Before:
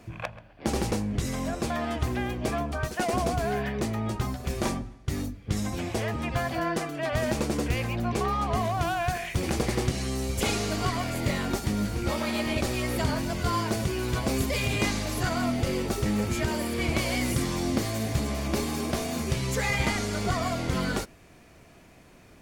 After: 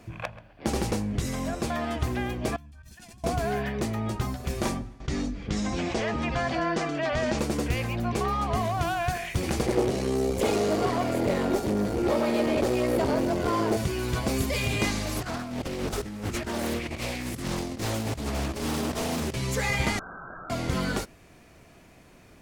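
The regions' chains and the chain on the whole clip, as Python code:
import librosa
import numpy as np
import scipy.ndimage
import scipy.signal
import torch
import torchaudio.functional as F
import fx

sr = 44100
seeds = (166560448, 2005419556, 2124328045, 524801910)

y = fx.chain(x, sr, fx.tone_stack(knobs='6-0-2'),
    fx.over_compress(threshold_db=-50.0, ratio=-1.0),
    fx.comb(ms=1.2, depth=0.44), at=(2.56, 3.24))
y = fx.chain(y, sr, fx.lowpass(hz=7000.0, slope=24),
    fx.peak_eq(hz=100.0, db=-15.0, octaves=0.34),
    fx.env_flatten(amount_pct=50), at=(5.0, 7.39))
y = fx.chain(y, sr, fx.tube_stage(drive_db=29.0, bias=0.55),
    fx.peak_eq(hz=460.0, db=14.5, octaves=2.0), at=(9.66, 13.77))
y = fx.chain(y, sr, fx.over_compress(threshold_db=-30.0, ratio=-0.5),
    fx.overload_stage(gain_db=21.5),
    fx.doppler_dist(depth_ms=0.59), at=(15.16, 19.34))
y = fx.chain(y, sr, fx.cheby1_highpass(hz=2000.0, order=10),
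    fx.freq_invert(carrier_hz=3600),
    fx.env_flatten(amount_pct=100), at=(19.99, 20.5))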